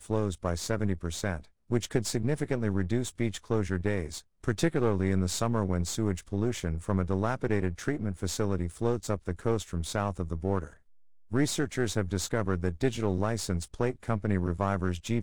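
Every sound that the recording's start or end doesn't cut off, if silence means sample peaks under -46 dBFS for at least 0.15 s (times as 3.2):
1.7–4.21
4.44–10.73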